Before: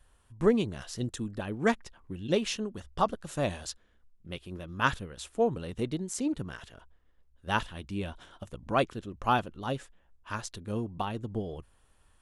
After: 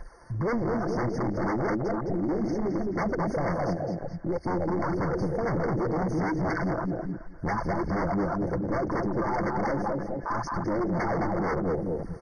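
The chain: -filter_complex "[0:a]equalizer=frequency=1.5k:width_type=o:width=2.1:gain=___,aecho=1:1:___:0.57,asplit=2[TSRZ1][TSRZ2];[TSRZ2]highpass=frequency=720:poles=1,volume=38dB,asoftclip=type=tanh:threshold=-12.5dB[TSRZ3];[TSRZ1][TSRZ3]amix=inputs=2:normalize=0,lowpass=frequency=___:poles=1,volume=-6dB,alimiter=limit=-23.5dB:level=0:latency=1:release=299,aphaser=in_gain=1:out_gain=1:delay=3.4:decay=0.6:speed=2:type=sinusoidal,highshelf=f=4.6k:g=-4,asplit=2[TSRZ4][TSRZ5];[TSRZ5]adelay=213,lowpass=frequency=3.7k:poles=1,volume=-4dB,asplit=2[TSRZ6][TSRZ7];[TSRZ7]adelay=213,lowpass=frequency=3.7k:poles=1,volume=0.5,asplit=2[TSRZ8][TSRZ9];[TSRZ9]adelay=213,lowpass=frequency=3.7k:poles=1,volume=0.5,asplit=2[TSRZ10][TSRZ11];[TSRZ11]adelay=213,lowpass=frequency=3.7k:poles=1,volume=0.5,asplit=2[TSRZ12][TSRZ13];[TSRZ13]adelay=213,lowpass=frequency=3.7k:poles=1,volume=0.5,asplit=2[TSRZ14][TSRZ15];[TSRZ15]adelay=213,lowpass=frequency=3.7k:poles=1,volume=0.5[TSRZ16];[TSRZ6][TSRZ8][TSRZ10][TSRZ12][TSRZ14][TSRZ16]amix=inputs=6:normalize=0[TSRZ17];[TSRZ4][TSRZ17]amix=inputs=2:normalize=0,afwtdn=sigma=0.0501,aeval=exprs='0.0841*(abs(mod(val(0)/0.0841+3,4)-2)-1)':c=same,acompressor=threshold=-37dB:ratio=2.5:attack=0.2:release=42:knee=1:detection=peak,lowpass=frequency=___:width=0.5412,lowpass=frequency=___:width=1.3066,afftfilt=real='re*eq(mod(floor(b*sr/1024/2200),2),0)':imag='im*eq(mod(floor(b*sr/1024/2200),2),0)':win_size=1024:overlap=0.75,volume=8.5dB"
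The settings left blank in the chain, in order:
-8, 5.9, 2.6k, 8.1k, 8.1k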